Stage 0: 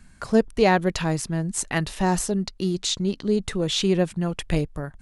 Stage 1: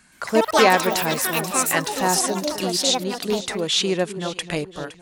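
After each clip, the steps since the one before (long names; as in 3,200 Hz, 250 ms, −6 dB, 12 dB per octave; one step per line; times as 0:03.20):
high-pass filter 620 Hz 6 dB per octave
delay that swaps between a low-pass and a high-pass 257 ms, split 1,100 Hz, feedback 59%, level −11 dB
delay with pitch and tempo change per echo 121 ms, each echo +6 semitones, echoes 3
level +5 dB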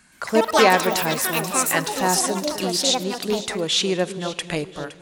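four-comb reverb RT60 1.6 s, combs from 33 ms, DRR 18.5 dB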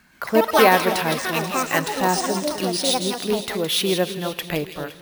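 high-shelf EQ 5,500 Hz −6.5 dB
delay with a high-pass on its return 165 ms, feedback 42%, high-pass 2,900 Hz, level −6 dB
bad sample-rate conversion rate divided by 3×, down filtered, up hold
level +1 dB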